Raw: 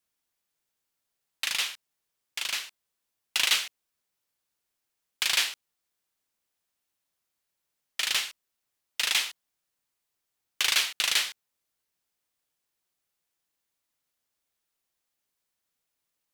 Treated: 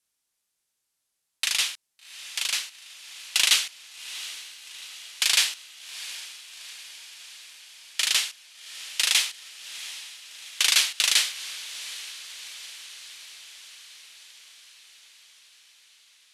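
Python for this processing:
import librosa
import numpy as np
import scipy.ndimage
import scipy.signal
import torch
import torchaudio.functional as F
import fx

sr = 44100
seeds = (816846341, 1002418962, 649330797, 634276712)

y = scipy.signal.sosfilt(scipy.signal.butter(4, 12000.0, 'lowpass', fs=sr, output='sos'), x)
y = fx.high_shelf(y, sr, hz=3000.0, db=9.5)
y = fx.echo_diffused(y, sr, ms=756, feedback_pct=65, wet_db=-14.5)
y = y * librosa.db_to_amplitude(-1.5)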